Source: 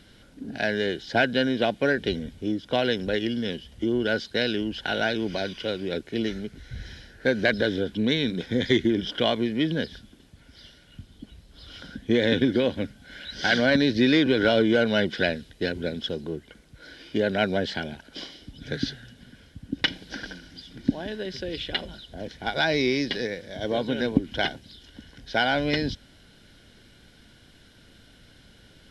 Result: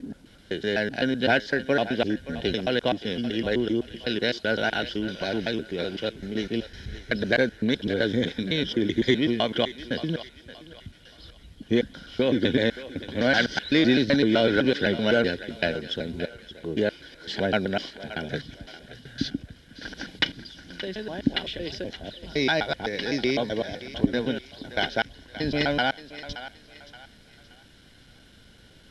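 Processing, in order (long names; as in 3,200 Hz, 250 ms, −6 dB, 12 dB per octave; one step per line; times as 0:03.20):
slices reordered back to front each 127 ms, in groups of 4
feedback echo with a high-pass in the loop 574 ms, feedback 39%, high-pass 500 Hz, level −13 dB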